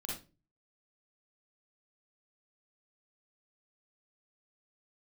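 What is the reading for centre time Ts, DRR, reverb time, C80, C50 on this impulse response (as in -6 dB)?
44 ms, -4.0 dB, 0.30 s, 9.5 dB, 0.5 dB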